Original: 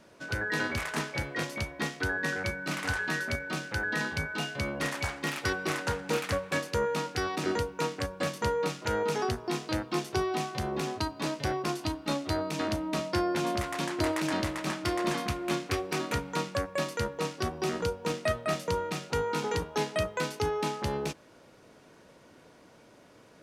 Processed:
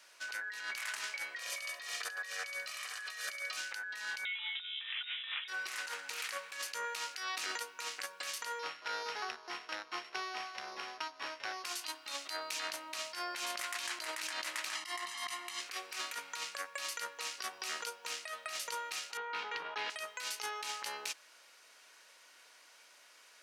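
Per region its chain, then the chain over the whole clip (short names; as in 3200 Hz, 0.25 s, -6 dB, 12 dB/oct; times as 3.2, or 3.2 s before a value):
1.38–3.57 comb 1.7 ms, depth 84% + feedback echo 68 ms, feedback 16%, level -4.5 dB
4.25–5.48 air absorption 330 m + inverted band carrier 3700 Hz
8.59–11.64 sample sorter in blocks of 8 samples + LPF 2400 Hz
14.75–15.61 brick-wall FIR low-pass 13000 Hz + comb 1 ms, depth 98%
19.17–19.9 air absorption 340 m + sustainer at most 39 dB/s
whole clip: Bessel high-pass 2200 Hz, order 2; notch 3500 Hz, Q 25; negative-ratio compressor -43 dBFS, ratio -1; gain +2.5 dB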